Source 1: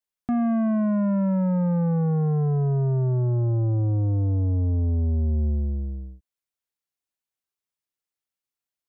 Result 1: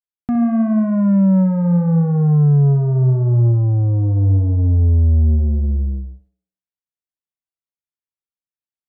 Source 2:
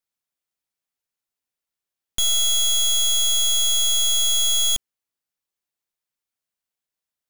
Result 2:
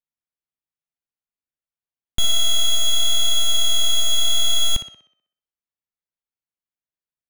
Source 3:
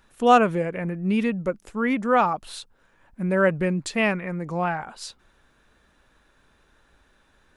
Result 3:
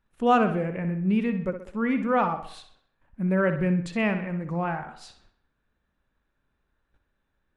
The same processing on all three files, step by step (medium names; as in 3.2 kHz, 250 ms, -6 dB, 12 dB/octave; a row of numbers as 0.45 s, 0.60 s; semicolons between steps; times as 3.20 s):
gate -56 dBFS, range -13 dB; tone controls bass +6 dB, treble -9 dB; tape echo 62 ms, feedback 51%, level -8.5 dB, low-pass 5.5 kHz; peak normalisation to -9 dBFS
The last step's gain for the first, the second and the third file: +2.0 dB, +4.0 dB, -4.5 dB